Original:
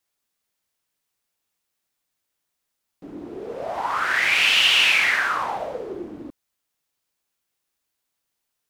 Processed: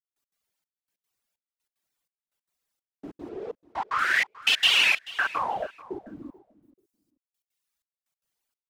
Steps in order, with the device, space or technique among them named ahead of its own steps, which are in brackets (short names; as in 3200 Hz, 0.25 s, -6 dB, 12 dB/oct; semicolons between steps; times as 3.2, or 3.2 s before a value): reverb removal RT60 1.8 s; 3.29–3.99 air absorption 75 m; trance gate with a delay (step gate "..x.xxxx." 188 bpm -60 dB; feedback echo 0.436 s, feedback 17%, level -19.5 dB)